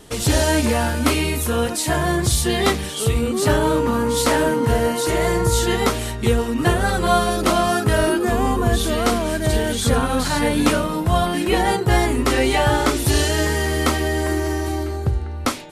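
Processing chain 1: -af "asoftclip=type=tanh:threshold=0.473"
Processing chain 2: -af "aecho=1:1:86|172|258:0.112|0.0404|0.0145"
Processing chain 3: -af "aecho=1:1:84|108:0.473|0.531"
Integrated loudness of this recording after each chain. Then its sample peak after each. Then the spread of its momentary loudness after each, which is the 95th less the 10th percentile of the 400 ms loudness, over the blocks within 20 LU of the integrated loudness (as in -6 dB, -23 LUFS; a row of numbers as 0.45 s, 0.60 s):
-20.0 LUFS, -19.5 LUFS, -18.0 LUFS; -7.5 dBFS, -3.5 dBFS, -2.5 dBFS; 4 LU, 4 LU, 4 LU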